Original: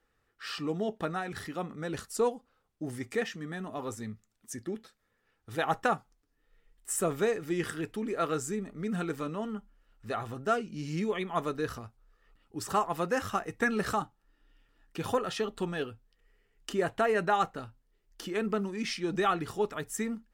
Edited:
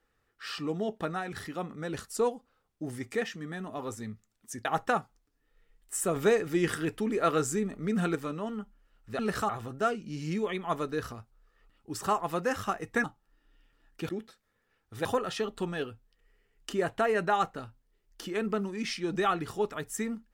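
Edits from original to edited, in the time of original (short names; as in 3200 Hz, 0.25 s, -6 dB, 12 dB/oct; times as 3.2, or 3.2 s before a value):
4.65–5.61 move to 15.05
7.12–9.11 gain +4 dB
13.7–14 move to 10.15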